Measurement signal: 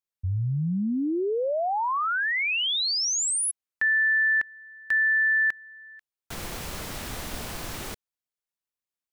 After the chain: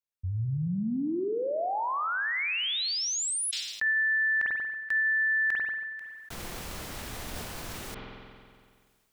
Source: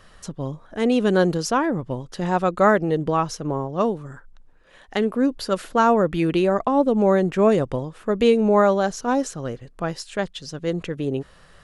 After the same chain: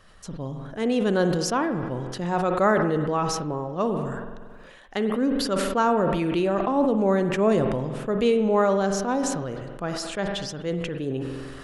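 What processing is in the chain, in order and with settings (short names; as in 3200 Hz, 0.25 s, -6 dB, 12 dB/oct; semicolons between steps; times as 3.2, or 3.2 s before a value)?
spring tank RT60 1.3 s, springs 46 ms, chirp 70 ms, DRR 9.5 dB; sustainer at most 29 dB/s; gain -4.5 dB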